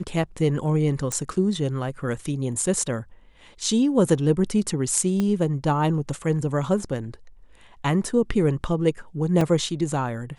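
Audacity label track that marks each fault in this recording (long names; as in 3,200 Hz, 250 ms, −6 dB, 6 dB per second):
1.120000	1.120000	click
5.200000	5.200000	click −13 dBFS
9.410000	9.410000	drop-out 3.6 ms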